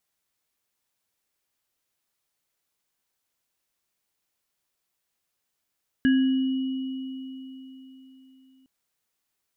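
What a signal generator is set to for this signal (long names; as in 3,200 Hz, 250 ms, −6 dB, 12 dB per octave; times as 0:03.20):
inharmonic partials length 2.61 s, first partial 263 Hz, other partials 1,660/2,920 Hz, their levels −9.5/−19.5 dB, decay 3.90 s, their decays 0.57/4.25 s, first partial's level −16 dB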